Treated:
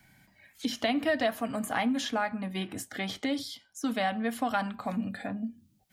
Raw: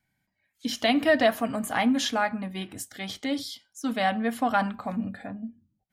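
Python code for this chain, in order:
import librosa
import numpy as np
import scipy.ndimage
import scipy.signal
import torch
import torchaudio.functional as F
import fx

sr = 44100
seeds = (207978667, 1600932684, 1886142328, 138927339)

y = fx.band_squash(x, sr, depth_pct=70)
y = y * librosa.db_to_amplitude(-4.5)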